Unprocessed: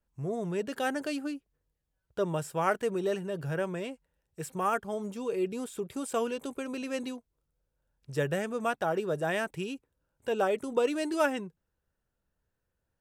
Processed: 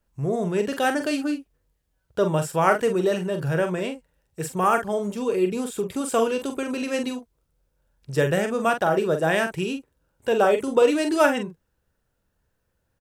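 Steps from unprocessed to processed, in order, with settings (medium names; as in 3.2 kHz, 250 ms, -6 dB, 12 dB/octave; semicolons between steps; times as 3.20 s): doubling 44 ms -7.5 dB; trim +8 dB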